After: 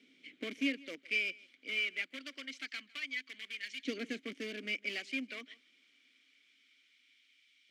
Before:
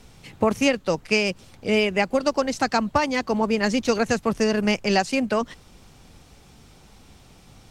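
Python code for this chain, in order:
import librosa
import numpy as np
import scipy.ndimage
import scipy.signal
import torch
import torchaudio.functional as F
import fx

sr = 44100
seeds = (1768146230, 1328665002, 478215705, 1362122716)

p1 = (np.mod(10.0 ** (16.0 / 20.0) * x + 1.0, 2.0) - 1.0) / 10.0 ** (16.0 / 20.0)
p2 = x + F.gain(torch.from_numpy(p1), -7.0).numpy()
p3 = fx.filter_lfo_highpass(p2, sr, shape='saw_up', hz=0.26, low_hz=390.0, high_hz=2100.0, q=0.84)
p4 = fx.vowel_filter(p3, sr, vowel='i')
y = p4 + 10.0 ** (-23.0 / 20.0) * np.pad(p4, (int(155 * sr / 1000.0), 0))[:len(p4)]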